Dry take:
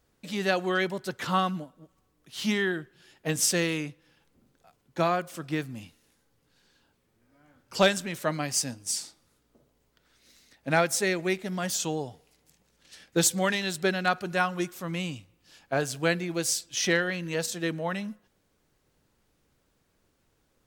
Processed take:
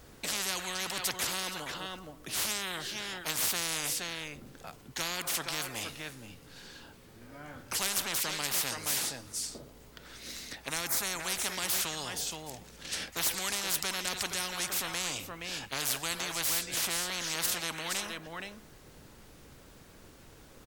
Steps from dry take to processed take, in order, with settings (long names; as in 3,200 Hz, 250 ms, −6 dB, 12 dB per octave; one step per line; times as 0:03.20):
0:10.68–0:11.20: flat-topped bell 3,500 Hz −13.5 dB 1.2 octaves
single-tap delay 471 ms −18.5 dB
every bin compressed towards the loudest bin 10 to 1
level −3.5 dB